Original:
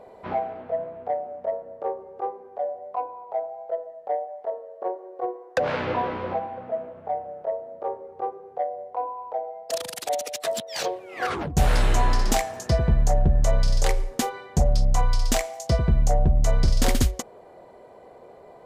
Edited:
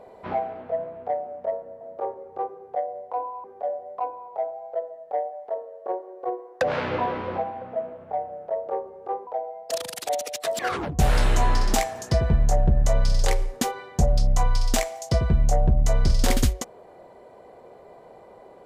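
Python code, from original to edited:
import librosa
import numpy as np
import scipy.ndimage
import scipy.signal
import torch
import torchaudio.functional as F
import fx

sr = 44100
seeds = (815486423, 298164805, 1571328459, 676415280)

y = fx.edit(x, sr, fx.swap(start_s=1.81, length_s=0.59, other_s=7.64, other_length_s=1.63),
    fx.cut(start_s=10.59, length_s=0.58), tone=tone)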